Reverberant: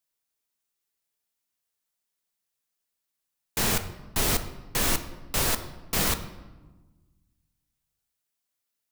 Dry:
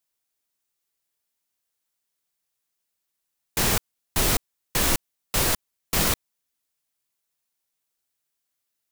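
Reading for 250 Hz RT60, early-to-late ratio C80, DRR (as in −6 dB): 1.8 s, 14.0 dB, 9.0 dB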